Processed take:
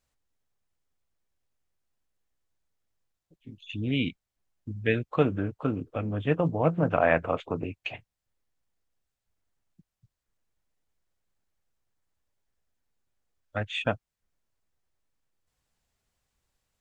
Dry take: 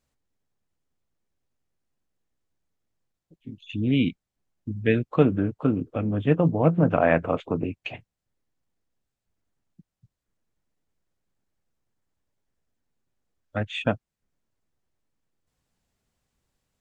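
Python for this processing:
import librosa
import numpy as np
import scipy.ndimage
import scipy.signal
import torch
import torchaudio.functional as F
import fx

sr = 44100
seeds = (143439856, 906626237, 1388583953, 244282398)

y = fx.peak_eq(x, sr, hz=220.0, db=-7.0, octaves=2.2)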